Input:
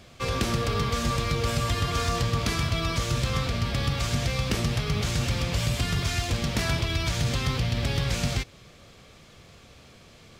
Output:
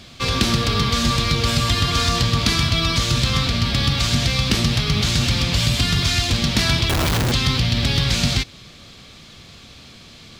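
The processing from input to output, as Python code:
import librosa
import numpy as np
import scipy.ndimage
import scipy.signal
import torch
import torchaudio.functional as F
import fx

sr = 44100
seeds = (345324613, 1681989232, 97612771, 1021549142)

y = fx.graphic_eq(x, sr, hz=(250, 500, 4000), db=(4, -5, 8))
y = fx.schmitt(y, sr, flips_db=-26.5, at=(6.89, 7.32))
y = y * librosa.db_to_amplitude(6.0)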